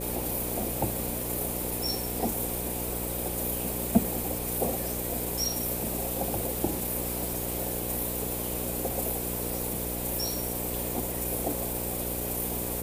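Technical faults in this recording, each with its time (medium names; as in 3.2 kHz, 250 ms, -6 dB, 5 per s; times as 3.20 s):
buzz 60 Hz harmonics 9 -36 dBFS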